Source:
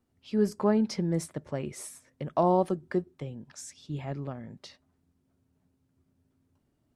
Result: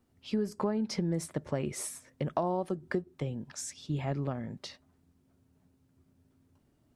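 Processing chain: compression 12:1, threshold -31 dBFS, peak gain reduction 12.5 dB; trim +4 dB

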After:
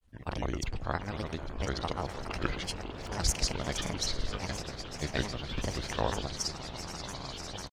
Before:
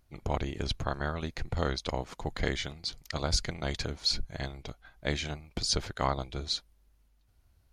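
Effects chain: echo with a slow build-up 146 ms, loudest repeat 8, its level -17 dB; granulator, pitch spread up and down by 7 st

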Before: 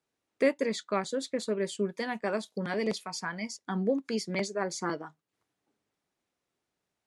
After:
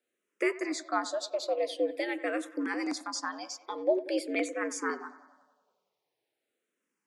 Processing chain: feedback echo behind a low-pass 93 ms, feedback 61%, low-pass 2.6 kHz, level -16 dB; frequency shift +97 Hz; barber-pole phaser -0.46 Hz; trim +2.5 dB

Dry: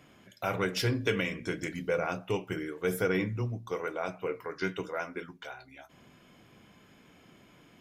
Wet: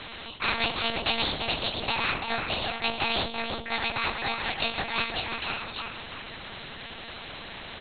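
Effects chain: rotating-head pitch shifter +10 st; tilt EQ +4 dB/octave; feedback comb 70 Hz, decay 0.79 s, harmonics all, mix 30%; in parallel at -4.5 dB: saturation -24 dBFS, distortion -12 dB; on the sum: doubling 14 ms -7 dB; filtered feedback delay 339 ms, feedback 35%, low-pass 1.8 kHz, level -8 dB; monotone LPC vocoder at 8 kHz 230 Hz; spectrum-flattening compressor 2:1; trim +2.5 dB

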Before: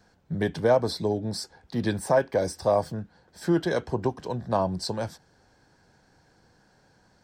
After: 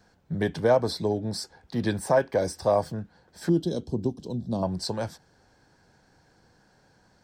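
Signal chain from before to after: 3.49–4.63 s: FFT filter 130 Hz 0 dB, 230 Hz +5 dB, 2 kHz -26 dB, 3.5 kHz -2 dB

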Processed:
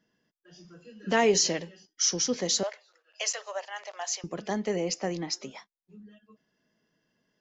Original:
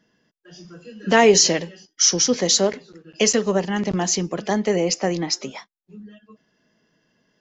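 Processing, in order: 2.63–4.24 s: elliptic high-pass 600 Hz, stop band 80 dB; trim -9 dB

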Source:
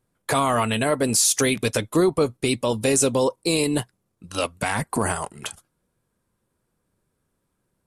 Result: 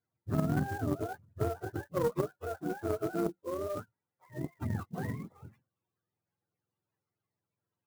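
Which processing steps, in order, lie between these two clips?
spectrum inverted on a logarithmic axis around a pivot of 420 Hz; Chebyshev shaper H 3 -15 dB, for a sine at -9 dBFS; sampling jitter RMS 0.027 ms; trim -6 dB

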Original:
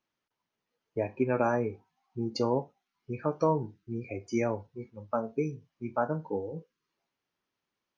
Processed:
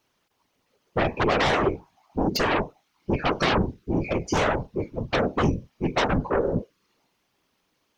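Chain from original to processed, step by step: peaking EQ 1.6 kHz -3.5 dB 0.77 oct; sine folder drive 15 dB, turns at -14 dBFS; whisper effect; trim -4 dB

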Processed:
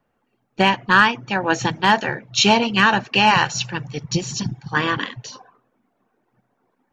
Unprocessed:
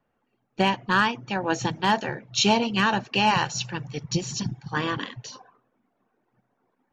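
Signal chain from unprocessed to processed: dynamic bell 1.8 kHz, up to +5 dB, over -36 dBFS, Q 0.83; trim +4 dB

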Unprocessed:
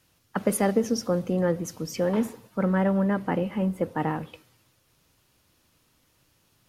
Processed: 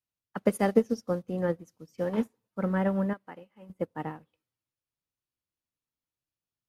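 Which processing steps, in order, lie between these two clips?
3.13–3.70 s: bass shelf 380 Hz -11.5 dB; upward expansion 2.5:1, over -40 dBFS; trim +2.5 dB

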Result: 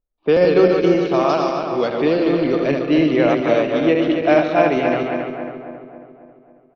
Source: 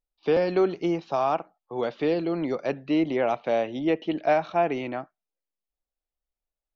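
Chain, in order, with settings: backward echo that repeats 136 ms, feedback 74%, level -4 dB; 1.29–1.88 s: peaking EQ 5 kHz +12.5 dB 0.49 oct; level-controlled noise filter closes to 930 Hz, open at -18 dBFS; peaking EQ 820 Hz -7 dB 0.43 oct; feedback delay 146 ms, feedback 46%, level -12 dB; trim +7.5 dB

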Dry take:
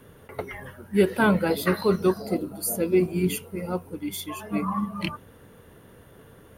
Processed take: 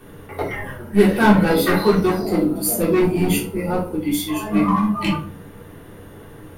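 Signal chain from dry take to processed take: in parallel at -6 dB: wavefolder -22.5 dBFS; on the sum: simulated room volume 290 m³, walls furnished, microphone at 3.5 m; trim -1 dB

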